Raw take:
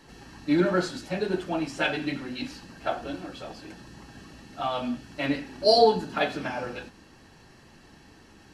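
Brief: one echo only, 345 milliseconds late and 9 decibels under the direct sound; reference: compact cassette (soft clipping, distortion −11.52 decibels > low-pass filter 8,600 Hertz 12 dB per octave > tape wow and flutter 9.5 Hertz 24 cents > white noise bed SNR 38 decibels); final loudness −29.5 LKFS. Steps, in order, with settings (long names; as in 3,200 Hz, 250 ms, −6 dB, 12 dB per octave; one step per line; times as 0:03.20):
single-tap delay 345 ms −9 dB
soft clipping −18 dBFS
low-pass filter 8,600 Hz 12 dB per octave
tape wow and flutter 9.5 Hz 24 cents
white noise bed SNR 38 dB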